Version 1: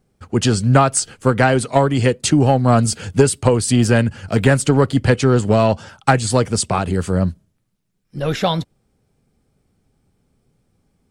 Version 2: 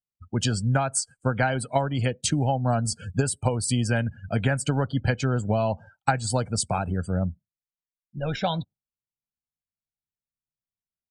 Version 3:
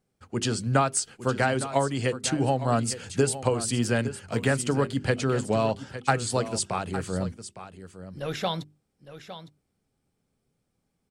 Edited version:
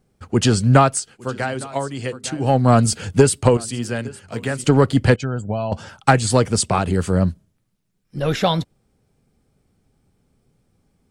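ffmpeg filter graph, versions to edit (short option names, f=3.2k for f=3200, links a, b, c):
-filter_complex "[2:a]asplit=2[a][b];[0:a]asplit=4[c][d][e][f];[c]atrim=end=1.02[g];[a]atrim=start=0.86:end=2.56[h];[d]atrim=start=2.4:end=3.572[i];[b]atrim=start=3.568:end=4.642[j];[e]atrim=start=4.638:end=5.162[k];[1:a]atrim=start=5.158:end=5.722[l];[f]atrim=start=5.718[m];[g][h]acrossfade=d=0.16:c1=tri:c2=tri[n];[n][i]acrossfade=d=0.16:c1=tri:c2=tri[o];[o][j]acrossfade=d=0.004:c1=hsin:c2=hsin[p];[p][k]acrossfade=d=0.004:c1=hsin:c2=hsin[q];[q][l]acrossfade=d=0.004:c1=hsin:c2=hsin[r];[r][m]acrossfade=d=0.004:c1=hsin:c2=hsin"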